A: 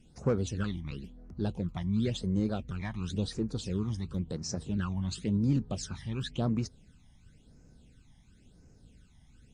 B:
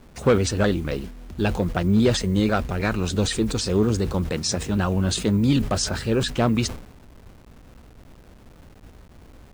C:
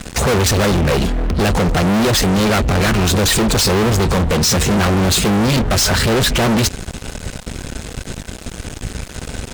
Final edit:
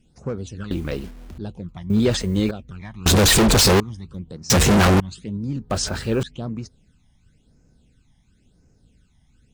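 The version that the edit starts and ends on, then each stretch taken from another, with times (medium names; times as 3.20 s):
A
0.71–1.38 s: from B
1.90–2.51 s: from B
3.06–3.80 s: from C
4.50–5.00 s: from C
5.70–6.23 s: from B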